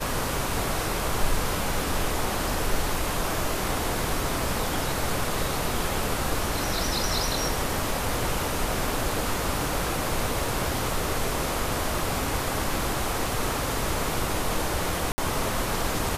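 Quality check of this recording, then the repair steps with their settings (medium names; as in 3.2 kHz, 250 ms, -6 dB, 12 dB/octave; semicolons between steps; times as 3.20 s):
15.12–15.18 s: dropout 60 ms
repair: interpolate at 15.12 s, 60 ms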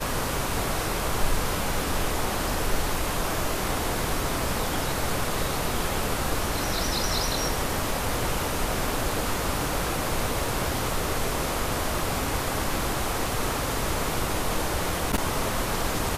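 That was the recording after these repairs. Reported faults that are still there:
nothing left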